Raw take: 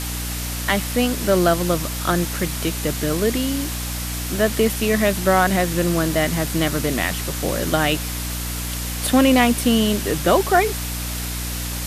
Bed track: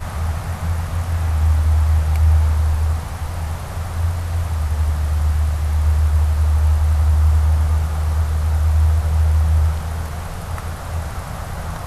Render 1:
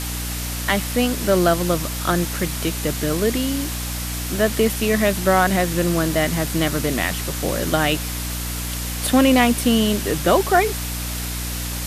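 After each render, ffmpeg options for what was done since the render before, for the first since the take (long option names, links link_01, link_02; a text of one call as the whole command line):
ffmpeg -i in.wav -af anull out.wav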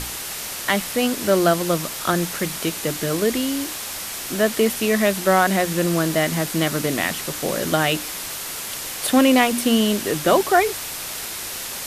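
ffmpeg -i in.wav -af "bandreject=frequency=60:width_type=h:width=6,bandreject=frequency=120:width_type=h:width=6,bandreject=frequency=180:width_type=h:width=6,bandreject=frequency=240:width_type=h:width=6,bandreject=frequency=300:width_type=h:width=6" out.wav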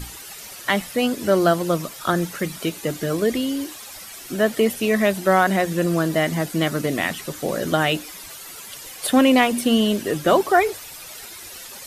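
ffmpeg -i in.wav -af "afftdn=noise_reduction=12:noise_floor=-31" out.wav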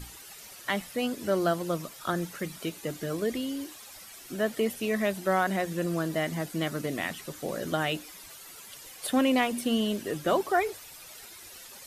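ffmpeg -i in.wav -af "volume=-9dB" out.wav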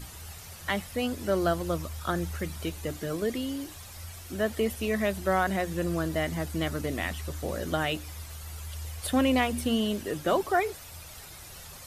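ffmpeg -i in.wav -i bed.wav -filter_complex "[1:a]volume=-24dB[link_01];[0:a][link_01]amix=inputs=2:normalize=0" out.wav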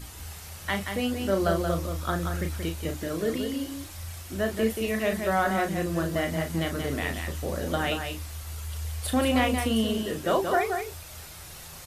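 ffmpeg -i in.wav -filter_complex "[0:a]asplit=2[link_01][link_02];[link_02]adelay=36,volume=-6.5dB[link_03];[link_01][link_03]amix=inputs=2:normalize=0,asplit=2[link_04][link_05];[link_05]aecho=0:1:179:0.501[link_06];[link_04][link_06]amix=inputs=2:normalize=0" out.wav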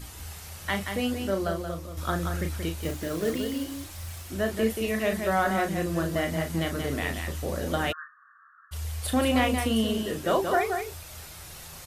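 ffmpeg -i in.wav -filter_complex "[0:a]asettb=1/sr,asplit=3[link_01][link_02][link_03];[link_01]atrim=end=2.814[link_04];[link_02]atrim=start=2.81:end=4.3,asetpts=PTS-STARTPTS,afade=type=in:duration=0.004:curve=qsin,afade=type=out:start_time=1.486:duration=0.004:curve=qsin,acrusher=bits=4:mode=log:mix=0:aa=0.000001[link_05];[link_03]atrim=start=4.296[link_06];[link_04][link_05]acrossfade=duration=0.004:curve1=hsin:curve2=qsin[link_07];[link_07][link_06]acrossfade=duration=0.004:curve1=qsin:curve2=hsin,asplit=3[link_08][link_09][link_10];[link_08]afade=type=out:start_time=7.91:duration=0.02[link_11];[link_09]asuperpass=centerf=1400:order=20:qfactor=2,afade=type=in:start_time=7.91:duration=0.02,afade=type=out:start_time=8.71:duration=0.02[link_12];[link_10]afade=type=in:start_time=8.71:duration=0.02[link_13];[link_11][link_12][link_13]amix=inputs=3:normalize=0,asplit=2[link_14][link_15];[link_14]atrim=end=1.97,asetpts=PTS-STARTPTS,afade=type=out:start_time=1.13:duration=0.84:curve=qua:silence=0.398107[link_16];[link_15]atrim=start=1.97,asetpts=PTS-STARTPTS,afade=type=in:duration=0.004:curve=hsin:silence=0.398107[link_17];[link_16][link_17]concat=n=2:v=0:a=1" out.wav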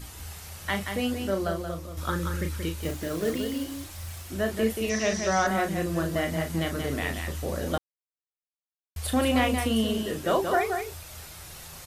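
ffmpeg -i in.wav -filter_complex "[0:a]asettb=1/sr,asplit=3[link_01][link_02][link_03];[link_01]atrim=end=2.094[link_04];[link_02]atrim=start=2.09:end=2.8,asetpts=PTS-STARTPTS,afade=type=in:duration=0.004:curve=qsin,afade=type=out:start_time=0.706:duration=0.004:curve=qsin,asuperstop=centerf=710:order=4:qfactor=3.4[link_05];[link_03]atrim=start=2.796[link_06];[link_04][link_05]acrossfade=duration=0.004:curve1=hsin:curve2=qsin[link_07];[link_07][link_06]acrossfade=duration=0.004:curve1=qsin:curve2=hsin,asettb=1/sr,asplit=3[link_08][link_09][link_10];[link_08]atrim=end=4.894[link_11];[link_09]atrim=start=4.89:end=5.47,asetpts=PTS-STARTPTS,afade=type=in:duration=0.004:curve=qsin,afade=type=out:start_time=0.576:duration=0.004:curve=qsin,lowpass=frequency=5800:width_type=q:width=10[link_12];[link_10]atrim=start=5.466[link_13];[link_11][link_12]acrossfade=duration=0.004:curve1=hsin:curve2=qsin[link_14];[link_14][link_13]acrossfade=duration=0.004:curve1=qsin:curve2=hsin,asplit=3[link_15][link_16][link_17];[link_15]atrim=end=7.78,asetpts=PTS-STARTPTS,afade=type=out:start_time=7.776:duration=0.004:curve=hsin[link_18];[link_16]atrim=start=7.78:end=8.96,asetpts=PTS-STARTPTS,volume=0[link_19];[link_17]atrim=start=8.96,asetpts=PTS-STARTPTS,afade=type=in:duration=0.004:curve=hsin[link_20];[link_18][link_19][link_20]concat=n=3:v=0:a=1" out.wav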